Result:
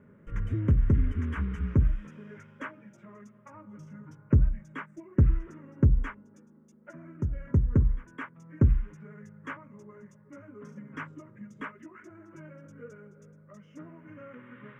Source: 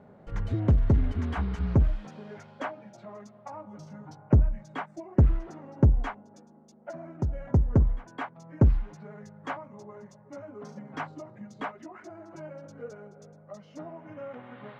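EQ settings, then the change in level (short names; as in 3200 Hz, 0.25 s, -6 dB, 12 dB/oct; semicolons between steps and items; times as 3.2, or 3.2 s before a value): notches 60/120/180 Hz; fixed phaser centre 1800 Hz, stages 4; 0.0 dB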